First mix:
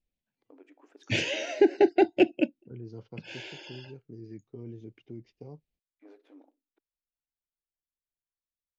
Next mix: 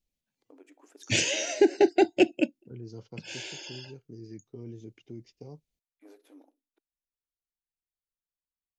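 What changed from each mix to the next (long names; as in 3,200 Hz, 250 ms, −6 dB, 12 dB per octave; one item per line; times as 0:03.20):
master: remove low-pass filter 3,100 Hz 12 dB per octave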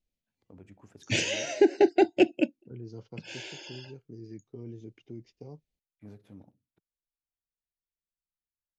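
first voice: remove linear-phase brick-wall high-pass 250 Hz
master: add low-pass filter 3,700 Hz 6 dB per octave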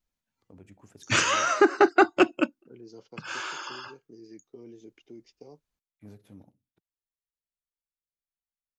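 second voice: add high-pass filter 290 Hz 12 dB per octave
background: remove Butterworth band-reject 1,200 Hz, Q 0.83
master: remove low-pass filter 3,700 Hz 6 dB per octave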